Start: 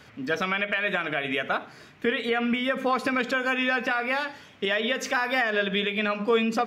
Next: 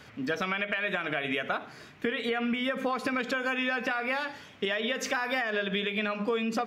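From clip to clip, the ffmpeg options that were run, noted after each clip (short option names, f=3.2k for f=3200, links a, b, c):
-af "acompressor=threshold=-26dB:ratio=6"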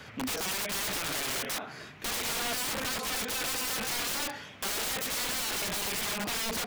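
-filter_complex "[0:a]equalizer=f=290:t=o:w=0.78:g=-2.5,acrossover=split=230[a][b];[a]alimiter=level_in=17.5dB:limit=-24dB:level=0:latency=1:release=305,volume=-17.5dB[c];[c][b]amix=inputs=2:normalize=0,aeval=exprs='(mod(37.6*val(0)+1,2)-1)/37.6':c=same,volume=4dB"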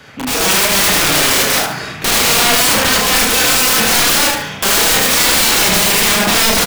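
-filter_complex "[0:a]asplit=2[a][b];[b]aecho=0:1:72|144|216:0.299|0.0866|0.0251[c];[a][c]amix=inputs=2:normalize=0,dynaudnorm=f=120:g=5:m=12dB,asplit=2[d][e];[e]aecho=0:1:32|78:0.668|0.631[f];[d][f]amix=inputs=2:normalize=0,volume=5.5dB"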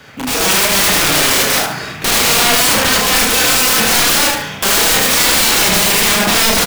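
-af "acrusher=bits=5:mode=log:mix=0:aa=0.000001"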